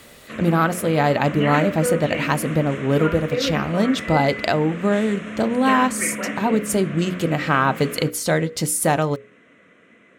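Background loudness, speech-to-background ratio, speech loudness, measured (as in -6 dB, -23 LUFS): -28.5 LUFS, 7.5 dB, -21.0 LUFS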